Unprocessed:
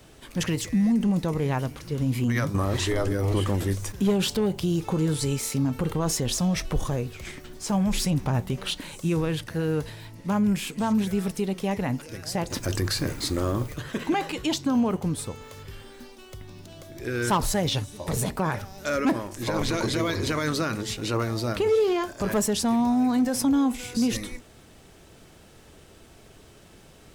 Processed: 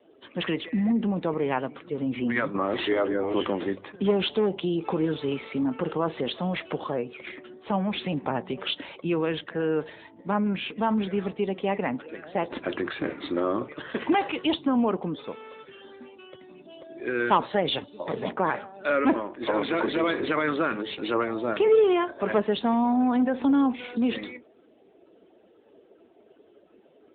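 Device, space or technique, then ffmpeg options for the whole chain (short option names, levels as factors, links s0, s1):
mobile call with aggressive noise cancelling: -af "highpass=150,highpass=270,afftdn=nr=16:nf=-49,volume=1.5" -ar 8000 -c:a libopencore_amrnb -b:a 10200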